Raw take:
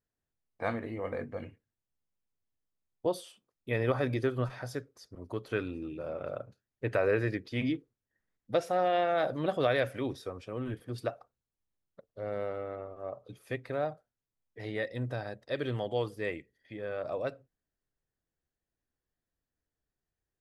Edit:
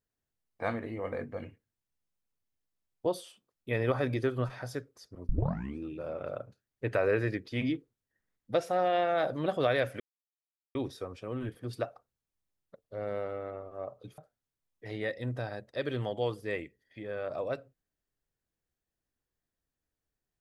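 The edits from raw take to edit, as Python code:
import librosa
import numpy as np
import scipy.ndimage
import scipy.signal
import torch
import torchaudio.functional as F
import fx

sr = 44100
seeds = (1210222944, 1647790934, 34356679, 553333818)

y = fx.edit(x, sr, fx.tape_start(start_s=5.29, length_s=0.5),
    fx.insert_silence(at_s=10.0, length_s=0.75),
    fx.cut(start_s=13.43, length_s=0.49), tone=tone)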